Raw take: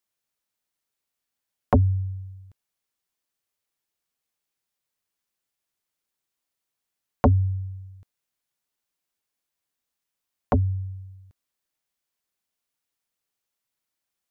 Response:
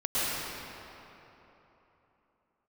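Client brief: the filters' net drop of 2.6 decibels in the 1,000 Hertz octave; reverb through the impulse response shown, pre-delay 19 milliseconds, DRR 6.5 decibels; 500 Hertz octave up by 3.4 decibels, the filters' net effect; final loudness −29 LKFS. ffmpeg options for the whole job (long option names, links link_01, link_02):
-filter_complex "[0:a]equalizer=frequency=500:width_type=o:gain=6,equalizer=frequency=1000:width_type=o:gain=-7,asplit=2[link_01][link_02];[1:a]atrim=start_sample=2205,adelay=19[link_03];[link_02][link_03]afir=irnorm=-1:irlink=0,volume=-18.5dB[link_04];[link_01][link_04]amix=inputs=2:normalize=0,volume=-3.5dB"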